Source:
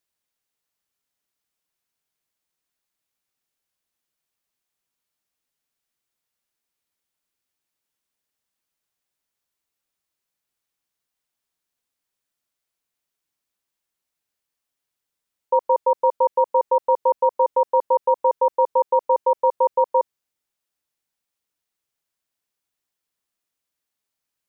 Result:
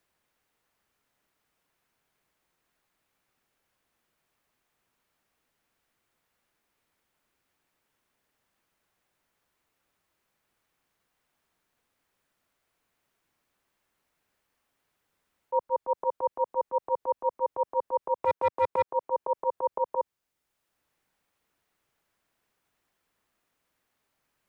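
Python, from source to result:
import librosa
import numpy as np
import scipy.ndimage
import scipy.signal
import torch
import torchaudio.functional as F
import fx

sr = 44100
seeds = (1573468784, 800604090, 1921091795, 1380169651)

y = fx.auto_swell(x, sr, attack_ms=120.0)
y = fx.leveller(y, sr, passes=2, at=(18.15, 18.89))
y = fx.band_squash(y, sr, depth_pct=40)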